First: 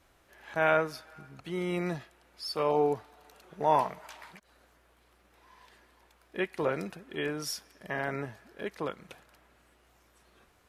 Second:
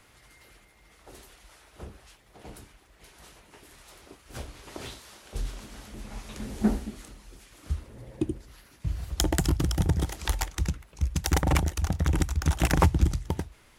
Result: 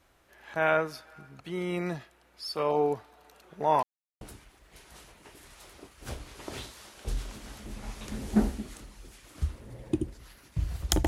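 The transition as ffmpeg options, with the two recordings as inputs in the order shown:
-filter_complex "[0:a]apad=whole_dur=11.07,atrim=end=11.07,asplit=2[s0][s1];[s0]atrim=end=3.83,asetpts=PTS-STARTPTS,afade=t=out:st=3.826:d=0.004:c=hsin[s2];[s1]atrim=start=3.83:end=4.21,asetpts=PTS-STARTPTS,volume=0[s3];[1:a]atrim=start=2.49:end=9.35,asetpts=PTS-STARTPTS,afade=t=in:d=0.004:c=hsin[s4];[s2][s3][s4]concat=n=3:v=0:a=1"

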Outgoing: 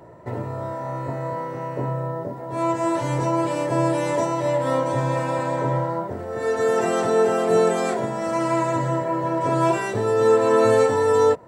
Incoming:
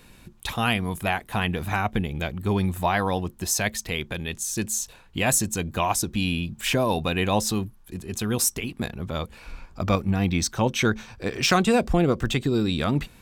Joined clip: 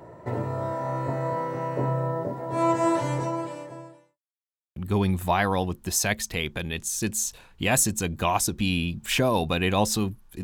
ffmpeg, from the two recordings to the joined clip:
-filter_complex "[0:a]apad=whole_dur=10.43,atrim=end=10.43,asplit=2[s0][s1];[s0]atrim=end=4.19,asetpts=PTS-STARTPTS,afade=t=out:st=2.88:d=1.31:c=qua[s2];[s1]atrim=start=4.19:end=4.76,asetpts=PTS-STARTPTS,volume=0[s3];[1:a]atrim=start=2.31:end=7.98,asetpts=PTS-STARTPTS,afade=t=in:d=0.004:c=hsin[s4];[s2][s3][s4]concat=n=3:v=0:a=1"

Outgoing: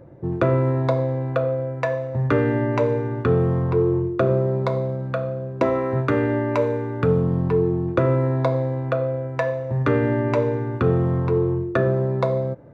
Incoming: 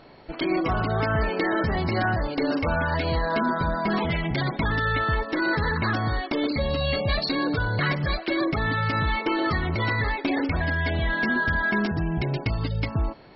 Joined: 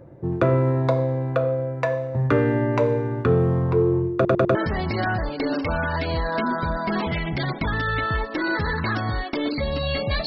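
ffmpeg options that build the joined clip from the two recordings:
-filter_complex "[0:a]apad=whole_dur=10.26,atrim=end=10.26,asplit=4[s0][s1][s2][s3];[s0]atrim=end=4.252[s4];[s1]atrim=start=4.148:end=4.252[s5];[s2]atrim=start=4.148:end=4.252[s6];[s3]atrim=start=4.148:end=4.252[s7];[1:a]atrim=start=1.528:end=7.24[s8];[s4][s5]acrossfade=d=0.004:c1=hsin:c2=hsin[s9];[s9][s6]acrossfade=d=0.004:c1=hsin:c2=hsin[s10];[s10][s7]acrossfade=d=0.004:c1=hsin:c2=hsin[s11];[s11][s8]acrossfade=d=0.004:c1=hsin:c2=hsin"

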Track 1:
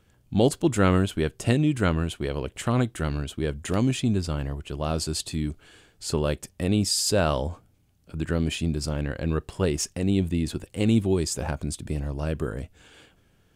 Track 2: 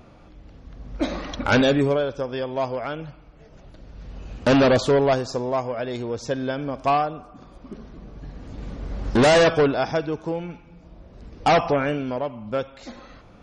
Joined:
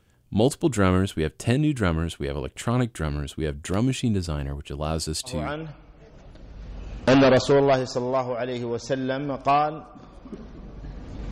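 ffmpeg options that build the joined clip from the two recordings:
-filter_complex "[0:a]apad=whole_dur=11.31,atrim=end=11.31,atrim=end=5.59,asetpts=PTS-STARTPTS[s0];[1:a]atrim=start=2.62:end=8.7,asetpts=PTS-STARTPTS[s1];[s0][s1]acrossfade=d=0.36:c1=qsin:c2=qsin"

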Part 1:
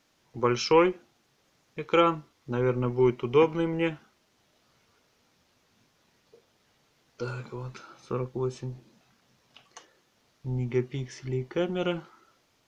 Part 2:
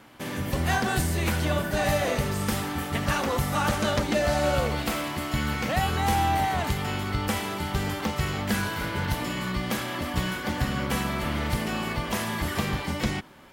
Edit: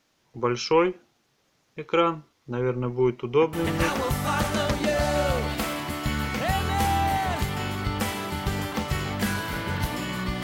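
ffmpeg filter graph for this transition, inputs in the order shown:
-filter_complex "[0:a]apad=whole_dur=10.43,atrim=end=10.43,atrim=end=3.91,asetpts=PTS-STARTPTS[s0];[1:a]atrim=start=2.81:end=9.71,asetpts=PTS-STARTPTS[s1];[s0][s1]acrossfade=d=0.38:c1=log:c2=log"

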